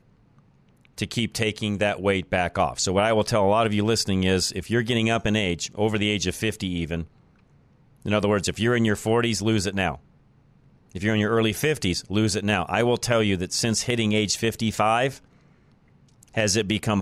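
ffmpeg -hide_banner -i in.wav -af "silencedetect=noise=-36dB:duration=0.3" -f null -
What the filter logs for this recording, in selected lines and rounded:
silence_start: 0.00
silence_end: 0.98 | silence_duration: 0.98
silence_start: 7.04
silence_end: 8.05 | silence_duration: 1.01
silence_start: 9.96
silence_end: 10.95 | silence_duration: 0.99
silence_start: 15.17
silence_end: 16.23 | silence_duration: 1.06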